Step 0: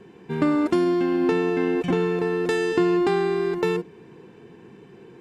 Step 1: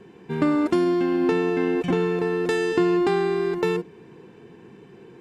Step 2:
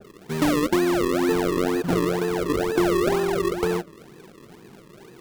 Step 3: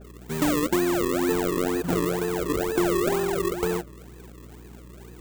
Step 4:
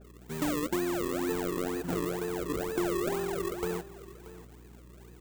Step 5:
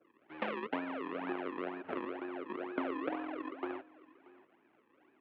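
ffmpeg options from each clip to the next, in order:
ffmpeg -i in.wav -af anull out.wav
ffmpeg -i in.wav -af "acrusher=samples=40:mix=1:aa=0.000001:lfo=1:lforange=40:lforate=2.1,adynamicequalizer=threshold=0.0126:dfrequency=1700:dqfactor=0.7:tfrequency=1700:tqfactor=0.7:attack=5:release=100:ratio=0.375:range=3:mode=cutabove:tftype=highshelf" out.wav
ffmpeg -i in.wav -af "aexciter=amount=2.5:drive=2:freq=6800,aeval=exprs='val(0)+0.00794*(sin(2*PI*60*n/s)+sin(2*PI*2*60*n/s)/2+sin(2*PI*3*60*n/s)/3+sin(2*PI*4*60*n/s)/4+sin(2*PI*5*60*n/s)/5)':channel_layout=same,volume=-2.5dB" out.wav
ffmpeg -i in.wav -af "aecho=1:1:632:0.15,volume=-7.5dB" out.wav
ffmpeg -i in.wav -af "aeval=exprs='0.15*(cos(1*acos(clip(val(0)/0.15,-1,1)))-cos(1*PI/2))+0.0422*(cos(3*acos(clip(val(0)/0.15,-1,1)))-cos(3*PI/2))':channel_layout=same,highpass=frequency=420:width_type=q:width=0.5412,highpass=frequency=420:width_type=q:width=1.307,lowpass=frequency=2900:width_type=q:width=0.5176,lowpass=frequency=2900:width_type=q:width=0.7071,lowpass=frequency=2900:width_type=q:width=1.932,afreqshift=-83,volume=9dB" out.wav

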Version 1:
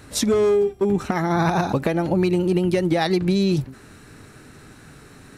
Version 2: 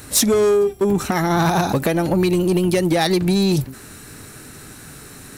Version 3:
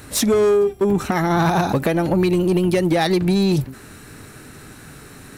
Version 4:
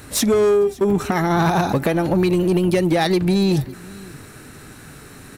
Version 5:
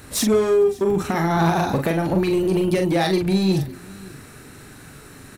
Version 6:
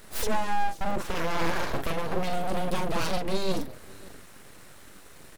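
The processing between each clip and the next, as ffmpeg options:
ffmpeg -i in.wav -af "aemphasis=mode=production:type=50fm,asoftclip=type=tanh:threshold=-14.5dB,volume=4.5dB" out.wav
ffmpeg -i in.wav -af "bass=frequency=250:gain=0,treble=frequency=4000:gain=-6" out.wav
ffmpeg -i in.wav -af "aecho=1:1:559:0.0794" out.wav
ffmpeg -i in.wav -filter_complex "[0:a]asplit=2[link_01][link_02];[link_02]adelay=42,volume=-5dB[link_03];[link_01][link_03]amix=inputs=2:normalize=0,volume=-3dB" out.wav
ffmpeg -i in.wav -af "aeval=exprs='abs(val(0))':channel_layout=same,volume=-5dB" out.wav

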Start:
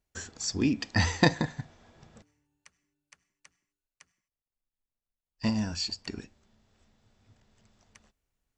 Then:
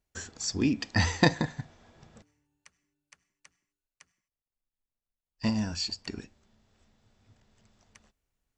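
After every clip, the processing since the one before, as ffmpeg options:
ffmpeg -i in.wav -af anull out.wav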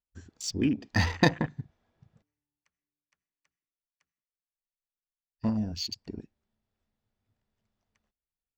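ffmpeg -i in.wav -af "afwtdn=0.0141,adynamicsmooth=sensitivity=8:basefreq=6400" out.wav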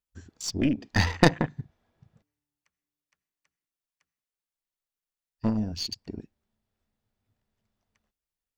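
ffmpeg -i in.wav -af "aeval=exprs='0.596*(cos(1*acos(clip(val(0)/0.596,-1,1)))-cos(1*PI/2))+0.133*(cos(4*acos(clip(val(0)/0.596,-1,1)))-cos(4*PI/2))':channel_layout=same,volume=1.5dB" out.wav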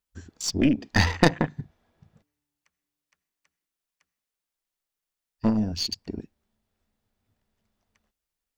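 ffmpeg -i in.wav -filter_complex "[0:a]equalizer=frequency=120:width_type=o:width=0.25:gain=-8.5,asplit=2[link_01][link_02];[link_02]alimiter=limit=-10.5dB:level=0:latency=1:release=276,volume=2dB[link_03];[link_01][link_03]amix=inputs=2:normalize=0,volume=-3dB" out.wav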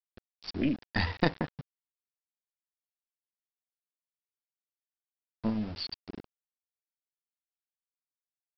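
ffmpeg -i in.wav -af "bandreject=frequency=50:width_type=h:width=6,bandreject=frequency=100:width_type=h:width=6,aresample=11025,aeval=exprs='val(0)*gte(abs(val(0)),0.0211)':channel_layout=same,aresample=44100,volume=-8dB" out.wav

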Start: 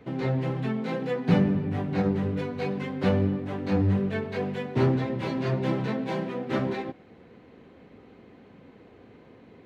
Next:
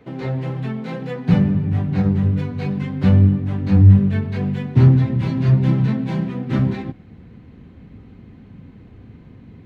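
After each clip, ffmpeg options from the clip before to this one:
ffmpeg -i in.wav -af "asubboost=boost=9:cutoff=160,volume=1.5dB" out.wav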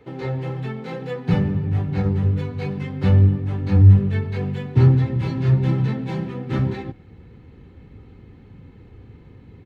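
ffmpeg -i in.wav -af "aecho=1:1:2.3:0.44,volume=-2dB" out.wav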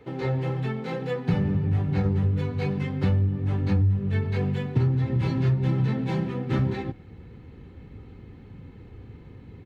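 ffmpeg -i in.wav -af "acompressor=threshold=-19dB:ratio=8" out.wav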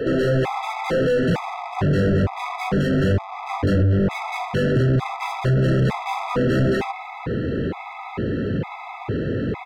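ffmpeg -i in.wav -filter_complex "[0:a]asplit=2[link_01][link_02];[link_02]highpass=frequency=720:poles=1,volume=43dB,asoftclip=type=tanh:threshold=-10.5dB[link_03];[link_01][link_03]amix=inputs=2:normalize=0,lowpass=frequency=1100:poles=1,volume=-6dB,afftfilt=real='re*gt(sin(2*PI*1.1*pts/sr)*(1-2*mod(floor(b*sr/1024/660),2)),0)':imag='im*gt(sin(2*PI*1.1*pts/sr)*(1-2*mod(floor(b*sr/1024/660),2)),0)':win_size=1024:overlap=0.75" out.wav

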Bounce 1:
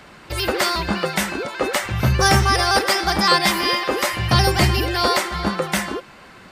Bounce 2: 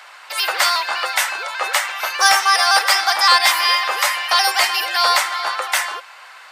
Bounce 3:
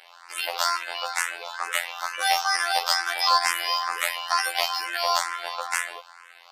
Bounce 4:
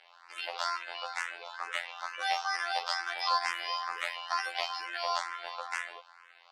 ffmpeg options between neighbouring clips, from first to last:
ffmpeg -i in.wav -af "highpass=frequency=760:width=0.5412,highpass=frequency=760:width=1.3066,acontrast=29" out.wav
ffmpeg -i in.wav -filter_complex "[0:a]afftfilt=real='hypot(re,im)*cos(PI*b)':imag='0':win_size=2048:overlap=0.75,asplit=2[link_01][link_02];[link_02]afreqshift=2.2[link_03];[link_01][link_03]amix=inputs=2:normalize=1,volume=-2dB" out.wav
ffmpeg -i in.wav -af "highpass=180,lowpass=4800,volume=-8dB" out.wav

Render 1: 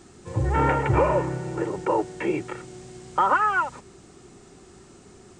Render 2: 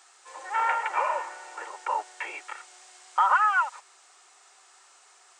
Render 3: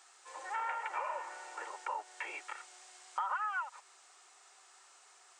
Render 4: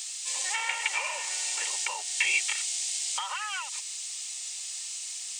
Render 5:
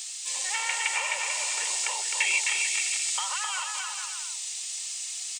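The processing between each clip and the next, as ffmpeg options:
ffmpeg -i in.wav -af "highpass=frequency=790:width=0.5412,highpass=frequency=790:width=1.3066" out.wav
ffmpeg -i in.wav -af "acompressor=threshold=-33dB:ratio=2.5,volume=-4.5dB" out.wav
ffmpeg -i in.wav -af "aexciter=amount=10.7:drive=7.8:freq=2200" out.wav
ffmpeg -i in.wav -af "aecho=1:1:260|442|569.4|658.6|721:0.631|0.398|0.251|0.158|0.1" out.wav

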